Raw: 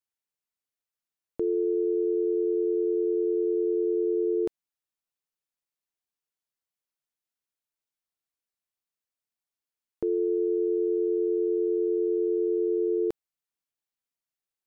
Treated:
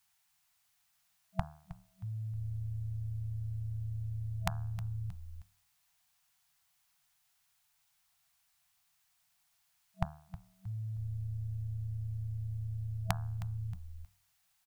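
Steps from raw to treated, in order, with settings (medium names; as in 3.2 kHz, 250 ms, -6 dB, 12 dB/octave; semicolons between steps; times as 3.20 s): de-hum 76.12 Hz, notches 22; frequency-shifting echo 314 ms, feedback 33%, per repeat -120 Hz, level -17 dB; FFT band-reject 190–650 Hz; trim +17 dB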